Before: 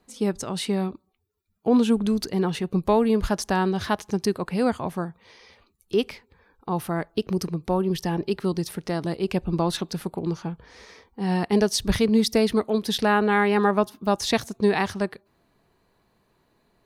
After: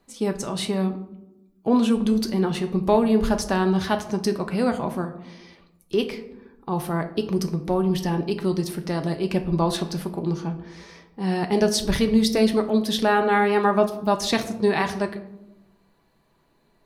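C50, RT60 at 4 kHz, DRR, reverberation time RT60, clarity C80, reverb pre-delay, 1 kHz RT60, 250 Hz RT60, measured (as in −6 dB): 12.0 dB, 0.45 s, 5.0 dB, 0.95 s, 15.0 dB, 3 ms, 0.80 s, 1.4 s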